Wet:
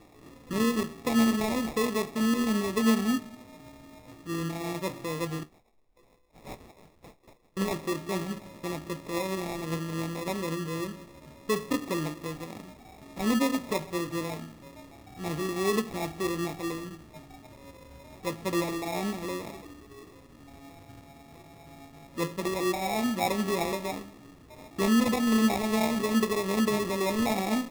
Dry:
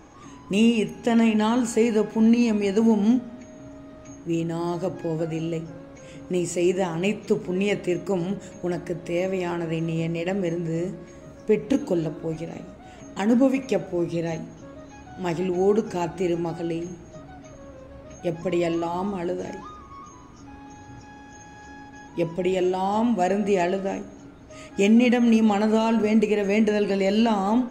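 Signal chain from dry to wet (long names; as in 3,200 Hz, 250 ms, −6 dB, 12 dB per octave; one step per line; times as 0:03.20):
0:05.43–0:07.57: inverse Chebyshev band-stop filter 150–1,000 Hz, stop band 70 dB
flanger 1.2 Hz, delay 8.8 ms, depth 4.9 ms, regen +63%
decimation without filtering 29×
level −2 dB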